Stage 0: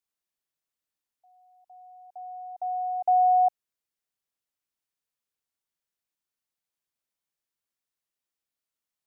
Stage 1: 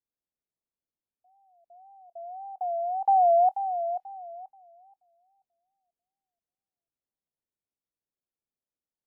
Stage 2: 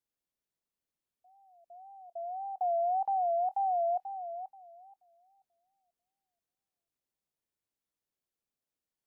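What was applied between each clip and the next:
thinning echo 485 ms, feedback 34%, high-pass 610 Hz, level -7.5 dB; wow and flutter 130 cents; level-controlled noise filter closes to 580 Hz, open at -26 dBFS; trim +1 dB
peak limiter -27.5 dBFS, peak gain reduction 12 dB; trim +1.5 dB

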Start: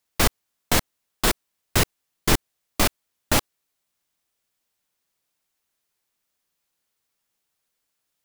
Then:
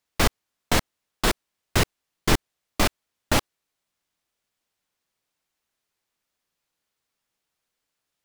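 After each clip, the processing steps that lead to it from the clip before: treble shelf 8 kHz -8.5 dB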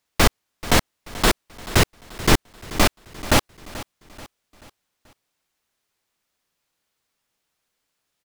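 feedback delay 434 ms, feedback 44%, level -17 dB; trim +4.5 dB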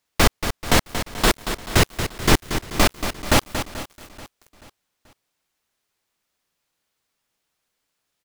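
bit-crushed delay 231 ms, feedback 35%, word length 6-bit, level -9 dB

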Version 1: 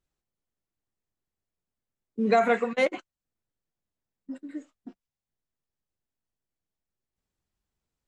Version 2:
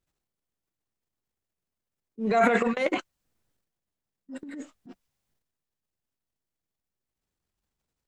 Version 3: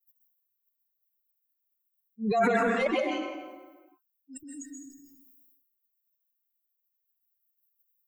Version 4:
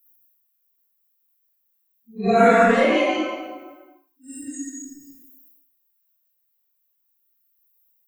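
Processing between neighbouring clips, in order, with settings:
transient shaper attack -9 dB, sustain +11 dB
expander on every frequency bin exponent 3; plate-style reverb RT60 0.76 s, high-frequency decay 0.75×, pre-delay 115 ms, DRR 3 dB; level flattener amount 50%; trim -1.5 dB
phase randomisation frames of 200 ms; gated-style reverb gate 150 ms flat, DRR 10.5 dB; trim +9 dB

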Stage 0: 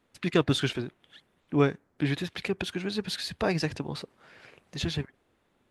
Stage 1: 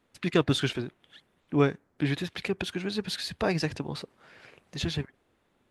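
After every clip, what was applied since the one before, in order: no audible change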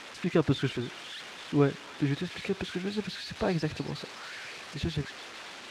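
zero-crossing glitches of -17.5 dBFS; tape spacing loss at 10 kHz 32 dB; feedback echo behind a high-pass 280 ms, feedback 76%, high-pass 2.1 kHz, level -8.5 dB

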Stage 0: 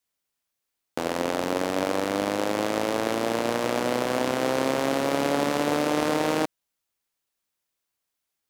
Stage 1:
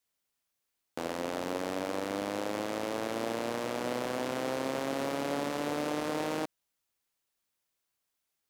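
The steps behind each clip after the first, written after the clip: peak limiter -20 dBFS, peak gain reduction 11.5 dB; trim -1 dB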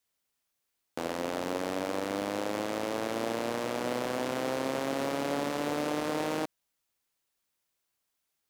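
short-mantissa float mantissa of 4-bit; trim +1.5 dB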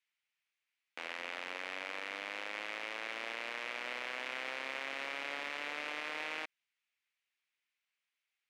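band-pass filter 2.3 kHz, Q 2.5; trim +4.5 dB

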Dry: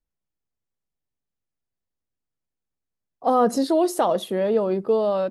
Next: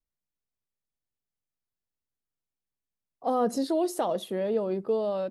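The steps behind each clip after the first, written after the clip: dynamic bell 1.2 kHz, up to -4 dB, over -31 dBFS, Q 1.2; trim -6 dB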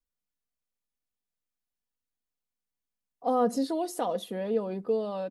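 comb 4.1 ms, depth 48%; trim -2.5 dB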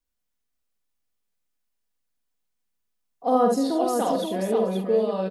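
multi-tap echo 47/74/224/372/530/772 ms -4.5/-6/-18.5/-19.5/-5/-19.5 dB; trim +3.5 dB

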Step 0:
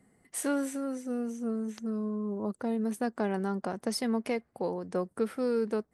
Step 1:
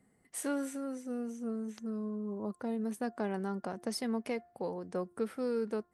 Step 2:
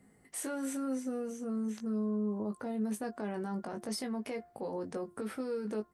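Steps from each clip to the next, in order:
de-hum 351.9 Hz, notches 5; trim -4.5 dB
peak limiter -34.5 dBFS, peak gain reduction 11 dB; doubling 19 ms -5.5 dB; trim +4.5 dB

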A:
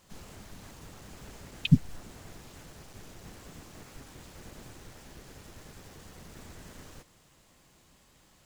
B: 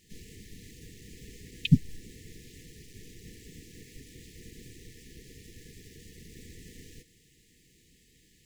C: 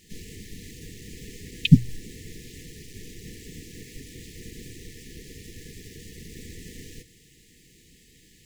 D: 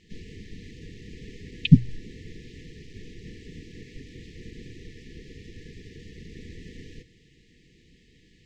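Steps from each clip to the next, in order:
FFT band-reject 500–1700 Hz
hum notches 60/120 Hz; trim +7 dB
distance through air 170 m

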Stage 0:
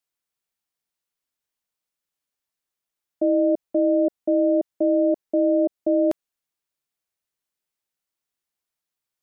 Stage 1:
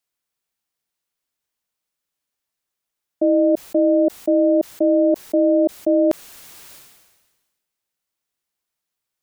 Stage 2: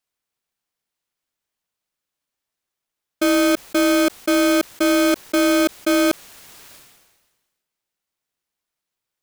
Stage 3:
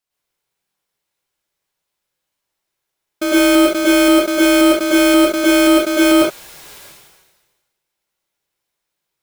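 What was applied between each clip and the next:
decay stretcher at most 43 dB/s; trim +3.5 dB
square wave that keeps the level; trim -4 dB
reverberation, pre-delay 99 ms, DRR -7.5 dB; trim -1.5 dB

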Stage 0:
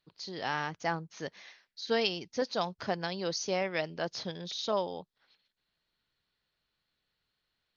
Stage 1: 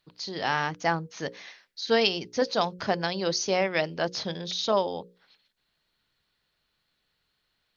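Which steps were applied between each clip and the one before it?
hum notches 60/120/180/240/300/360/420/480/540 Hz; trim +6.5 dB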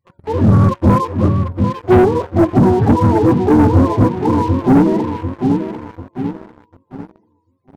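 spectrum inverted on a logarithmic axis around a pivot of 410 Hz; feedback delay 744 ms, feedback 42%, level -9 dB; waveshaping leveller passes 3; trim +8.5 dB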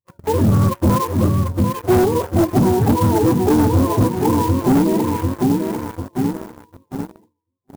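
gate with hold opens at -33 dBFS; compression 3:1, threshold -19 dBFS, peak gain reduction 9 dB; sampling jitter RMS 0.042 ms; trim +4 dB

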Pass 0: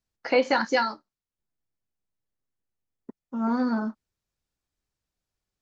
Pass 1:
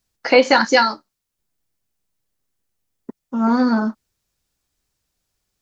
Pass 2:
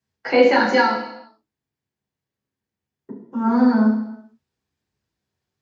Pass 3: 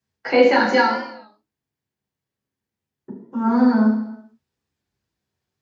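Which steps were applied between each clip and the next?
treble shelf 3.8 kHz +6.5 dB; trim +8.5 dB
reverberation RT60 0.85 s, pre-delay 3 ms, DRR -4.5 dB; trim -16 dB
warped record 33 1/3 rpm, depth 100 cents

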